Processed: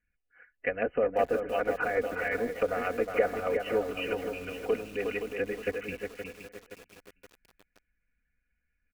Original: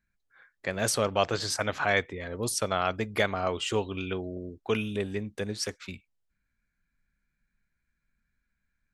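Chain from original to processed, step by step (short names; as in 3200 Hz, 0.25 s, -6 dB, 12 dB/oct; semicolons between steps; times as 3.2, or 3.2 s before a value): bell 1000 Hz -15 dB 0.54 oct; on a send: feedback echo 0.459 s, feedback 35%, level -22.5 dB; on the sum: harmonic-percussive split harmonic -13 dB; brick-wall FIR low-pass 3100 Hz; comb 4.1 ms, depth 85%; echo 0.361 s -6 dB; treble ducked by the level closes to 960 Hz, closed at -27 dBFS; bell 210 Hz -10.5 dB 0.64 oct; lo-fi delay 0.521 s, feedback 55%, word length 8-bit, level -9 dB; gain +4 dB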